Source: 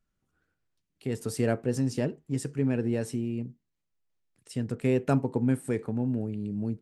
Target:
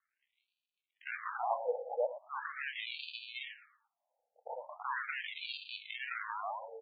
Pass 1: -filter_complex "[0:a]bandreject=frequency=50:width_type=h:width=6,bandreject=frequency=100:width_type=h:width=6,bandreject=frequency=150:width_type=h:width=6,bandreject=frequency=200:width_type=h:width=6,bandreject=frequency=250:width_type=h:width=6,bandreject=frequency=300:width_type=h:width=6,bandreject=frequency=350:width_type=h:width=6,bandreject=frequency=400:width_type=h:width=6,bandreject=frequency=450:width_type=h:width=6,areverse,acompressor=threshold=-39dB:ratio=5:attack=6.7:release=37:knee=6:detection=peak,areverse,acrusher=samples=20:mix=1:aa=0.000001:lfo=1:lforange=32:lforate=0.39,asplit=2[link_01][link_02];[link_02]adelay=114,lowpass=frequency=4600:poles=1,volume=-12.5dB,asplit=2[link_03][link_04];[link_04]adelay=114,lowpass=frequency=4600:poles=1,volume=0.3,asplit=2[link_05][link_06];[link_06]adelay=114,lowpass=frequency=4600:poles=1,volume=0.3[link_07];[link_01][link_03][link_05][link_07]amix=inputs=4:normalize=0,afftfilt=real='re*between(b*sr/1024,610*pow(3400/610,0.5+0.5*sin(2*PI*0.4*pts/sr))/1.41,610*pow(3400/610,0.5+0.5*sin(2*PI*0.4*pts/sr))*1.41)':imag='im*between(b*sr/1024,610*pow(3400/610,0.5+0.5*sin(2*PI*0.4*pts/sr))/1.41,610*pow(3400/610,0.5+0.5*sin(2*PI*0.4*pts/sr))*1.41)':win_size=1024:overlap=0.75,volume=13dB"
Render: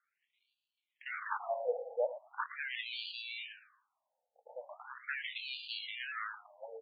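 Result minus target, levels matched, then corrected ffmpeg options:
sample-and-hold swept by an LFO: distortion −9 dB
-filter_complex "[0:a]bandreject=frequency=50:width_type=h:width=6,bandreject=frequency=100:width_type=h:width=6,bandreject=frequency=150:width_type=h:width=6,bandreject=frequency=200:width_type=h:width=6,bandreject=frequency=250:width_type=h:width=6,bandreject=frequency=300:width_type=h:width=6,bandreject=frequency=350:width_type=h:width=6,bandreject=frequency=400:width_type=h:width=6,bandreject=frequency=450:width_type=h:width=6,areverse,acompressor=threshold=-39dB:ratio=5:attack=6.7:release=37:knee=6:detection=peak,areverse,acrusher=samples=53:mix=1:aa=0.000001:lfo=1:lforange=84.8:lforate=0.39,asplit=2[link_01][link_02];[link_02]adelay=114,lowpass=frequency=4600:poles=1,volume=-12.5dB,asplit=2[link_03][link_04];[link_04]adelay=114,lowpass=frequency=4600:poles=1,volume=0.3,asplit=2[link_05][link_06];[link_06]adelay=114,lowpass=frequency=4600:poles=1,volume=0.3[link_07];[link_01][link_03][link_05][link_07]amix=inputs=4:normalize=0,afftfilt=real='re*between(b*sr/1024,610*pow(3400/610,0.5+0.5*sin(2*PI*0.4*pts/sr))/1.41,610*pow(3400/610,0.5+0.5*sin(2*PI*0.4*pts/sr))*1.41)':imag='im*between(b*sr/1024,610*pow(3400/610,0.5+0.5*sin(2*PI*0.4*pts/sr))/1.41,610*pow(3400/610,0.5+0.5*sin(2*PI*0.4*pts/sr))*1.41)':win_size=1024:overlap=0.75,volume=13dB"

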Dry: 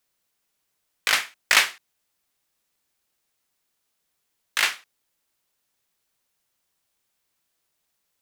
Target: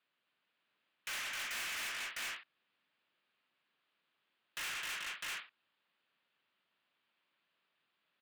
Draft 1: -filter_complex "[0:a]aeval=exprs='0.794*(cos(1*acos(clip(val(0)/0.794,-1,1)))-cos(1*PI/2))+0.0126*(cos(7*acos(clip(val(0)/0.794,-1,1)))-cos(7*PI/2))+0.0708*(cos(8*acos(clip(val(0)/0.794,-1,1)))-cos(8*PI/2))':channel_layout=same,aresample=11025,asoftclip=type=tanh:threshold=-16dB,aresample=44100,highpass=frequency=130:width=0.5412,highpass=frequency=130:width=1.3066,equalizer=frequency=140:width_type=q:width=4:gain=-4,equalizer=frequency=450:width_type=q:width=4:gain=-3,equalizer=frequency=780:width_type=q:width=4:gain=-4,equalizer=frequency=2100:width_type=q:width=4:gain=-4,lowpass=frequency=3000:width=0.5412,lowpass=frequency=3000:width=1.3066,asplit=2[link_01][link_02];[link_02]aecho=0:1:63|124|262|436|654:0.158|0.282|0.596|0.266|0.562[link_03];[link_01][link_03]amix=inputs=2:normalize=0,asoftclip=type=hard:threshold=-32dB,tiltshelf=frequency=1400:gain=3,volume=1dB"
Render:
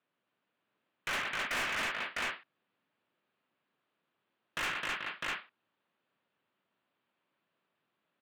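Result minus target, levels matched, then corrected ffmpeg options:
1,000 Hz band +4.5 dB; hard clipping: distortion −4 dB
-filter_complex "[0:a]aeval=exprs='0.794*(cos(1*acos(clip(val(0)/0.794,-1,1)))-cos(1*PI/2))+0.0126*(cos(7*acos(clip(val(0)/0.794,-1,1)))-cos(7*PI/2))+0.0708*(cos(8*acos(clip(val(0)/0.794,-1,1)))-cos(8*PI/2))':channel_layout=same,aresample=11025,asoftclip=type=tanh:threshold=-16dB,aresample=44100,highpass=frequency=130:width=0.5412,highpass=frequency=130:width=1.3066,equalizer=frequency=140:width_type=q:width=4:gain=-4,equalizer=frequency=450:width_type=q:width=4:gain=-3,equalizer=frequency=780:width_type=q:width=4:gain=-4,equalizer=frequency=2100:width_type=q:width=4:gain=-4,lowpass=frequency=3000:width=0.5412,lowpass=frequency=3000:width=1.3066,asplit=2[link_01][link_02];[link_02]aecho=0:1:63|124|262|436|654:0.158|0.282|0.596|0.266|0.562[link_03];[link_01][link_03]amix=inputs=2:normalize=0,asoftclip=type=hard:threshold=-42.5dB,tiltshelf=frequency=1400:gain=-4.5,volume=1dB"

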